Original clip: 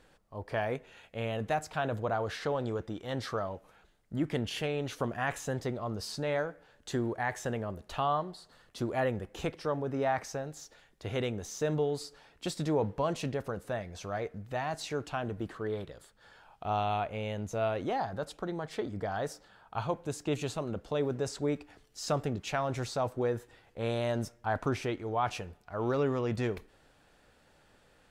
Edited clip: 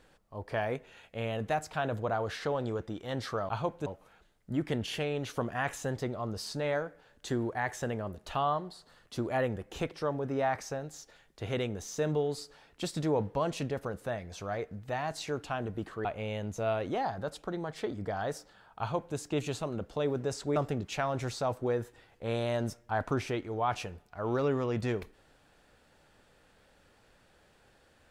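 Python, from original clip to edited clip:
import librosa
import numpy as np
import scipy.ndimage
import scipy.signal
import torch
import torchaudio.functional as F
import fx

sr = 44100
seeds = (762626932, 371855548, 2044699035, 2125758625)

y = fx.edit(x, sr, fx.cut(start_s=15.68, length_s=1.32),
    fx.duplicate(start_s=19.74, length_s=0.37, to_s=3.49),
    fx.cut(start_s=21.51, length_s=0.6), tone=tone)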